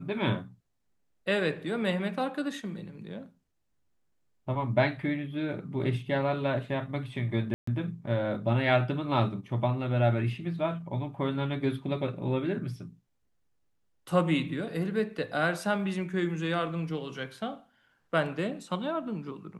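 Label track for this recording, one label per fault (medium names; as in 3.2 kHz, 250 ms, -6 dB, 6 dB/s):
7.540000	7.670000	dropout 134 ms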